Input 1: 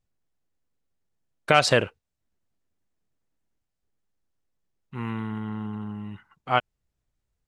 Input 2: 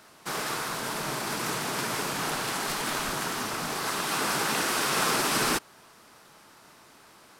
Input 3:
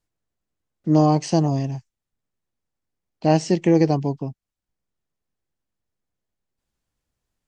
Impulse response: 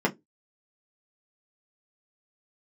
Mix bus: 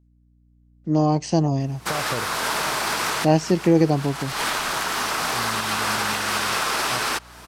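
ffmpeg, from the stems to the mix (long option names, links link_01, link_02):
-filter_complex "[0:a]tiltshelf=frequency=880:gain=8.5,adelay=400,volume=-18dB[link_01];[1:a]acrossover=split=530|6100[link_02][link_03][link_04];[link_02]acompressor=threshold=-49dB:ratio=4[link_05];[link_03]acompressor=threshold=-30dB:ratio=4[link_06];[link_04]acompressor=threshold=-44dB:ratio=4[link_07];[link_05][link_06][link_07]amix=inputs=3:normalize=0,adelay=1600,volume=2dB[link_08];[2:a]volume=-8.5dB,asplit=2[link_09][link_10];[link_10]apad=whole_len=396854[link_11];[link_08][link_11]sidechaincompress=threshold=-43dB:ratio=4:attack=8.5:release=170[link_12];[link_01][link_12]amix=inputs=2:normalize=0,alimiter=limit=-22dB:level=0:latency=1:release=313,volume=0dB[link_13];[link_09][link_13]amix=inputs=2:normalize=0,aeval=exprs='val(0)+0.00141*(sin(2*PI*60*n/s)+sin(2*PI*2*60*n/s)/2+sin(2*PI*3*60*n/s)/3+sin(2*PI*4*60*n/s)/4+sin(2*PI*5*60*n/s)/5)':channel_layout=same,dynaudnorm=framelen=220:gausssize=9:maxgain=9dB"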